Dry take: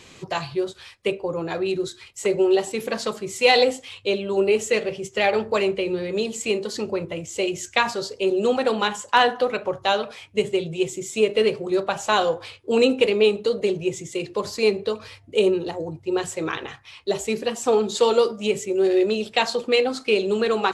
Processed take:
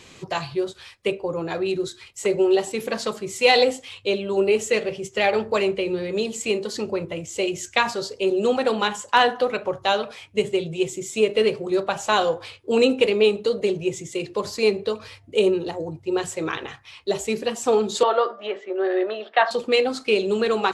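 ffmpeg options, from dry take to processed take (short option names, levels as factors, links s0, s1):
-filter_complex "[0:a]asettb=1/sr,asplit=3[s0][s1][s2];[s0]atrim=end=18.034[s3];[s1]atrim=start=18.03:end=19.51,asetpts=PTS-STARTPTS,afade=t=in:d=0.004:c=qsin,afade=t=out:st=1.476:d=0.004:c=qsin,highpass=f=350:w=0.5412,highpass=f=350:w=1.3066,equalizer=f=440:t=q:w=4:g=-7,equalizer=f=670:t=q:w=4:g=8,equalizer=f=1200:t=q:w=4:g=7,equalizer=f=1700:t=q:w=4:g=9,equalizer=f=2500:t=q:w=4:g=-9,lowpass=f=3200:w=0.5412,lowpass=f=3200:w=1.3066[s4];[s2]atrim=start=19.506[s5];[s3][s4]acrossfade=d=0.004:c1=hsin:c2=qsin[s6];[s6][s5]acrossfade=d=0.004:c1=qsin:c2=hsin"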